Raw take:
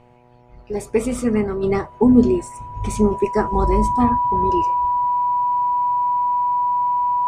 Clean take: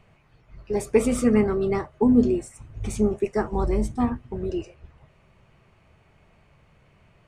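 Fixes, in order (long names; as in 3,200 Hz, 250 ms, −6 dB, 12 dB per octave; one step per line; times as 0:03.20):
hum removal 122 Hz, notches 8
notch filter 980 Hz, Q 30
level correction −5 dB, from 0:01.63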